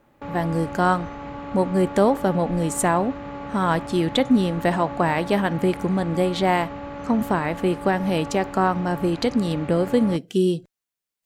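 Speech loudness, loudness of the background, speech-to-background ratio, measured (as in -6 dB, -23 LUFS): -22.5 LUFS, -34.5 LUFS, 12.0 dB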